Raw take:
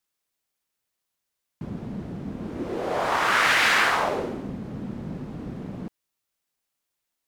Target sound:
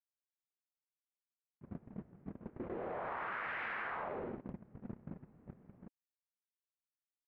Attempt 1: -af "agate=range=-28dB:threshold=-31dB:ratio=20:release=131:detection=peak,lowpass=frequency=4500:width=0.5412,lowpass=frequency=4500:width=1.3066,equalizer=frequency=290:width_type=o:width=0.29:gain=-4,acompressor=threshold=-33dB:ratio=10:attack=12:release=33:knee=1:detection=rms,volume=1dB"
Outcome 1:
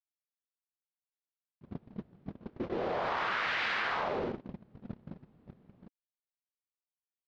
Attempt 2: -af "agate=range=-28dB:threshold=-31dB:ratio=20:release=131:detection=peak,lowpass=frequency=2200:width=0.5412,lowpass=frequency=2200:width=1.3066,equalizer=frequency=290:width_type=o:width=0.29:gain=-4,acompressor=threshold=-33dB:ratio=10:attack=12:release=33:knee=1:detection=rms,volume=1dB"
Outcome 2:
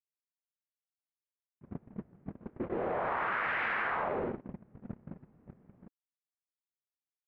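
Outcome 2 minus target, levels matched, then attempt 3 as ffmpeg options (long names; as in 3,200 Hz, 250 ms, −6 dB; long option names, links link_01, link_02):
downward compressor: peak gain reduction −8 dB
-af "agate=range=-28dB:threshold=-31dB:ratio=20:release=131:detection=peak,lowpass=frequency=2200:width=0.5412,lowpass=frequency=2200:width=1.3066,equalizer=frequency=290:width_type=o:width=0.29:gain=-4,acompressor=threshold=-42dB:ratio=10:attack=12:release=33:knee=1:detection=rms,volume=1dB"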